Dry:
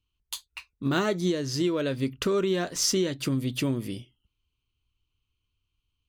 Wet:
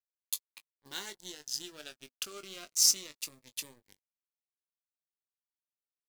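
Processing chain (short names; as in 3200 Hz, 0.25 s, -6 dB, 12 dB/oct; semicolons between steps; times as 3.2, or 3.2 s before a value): Wiener smoothing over 15 samples; differentiator; modulation noise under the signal 22 dB; crossover distortion -56.5 dBFS; doubler 20 ms -10.5 dB; cascading phaser falling 0.33 Hz; gain +4 dB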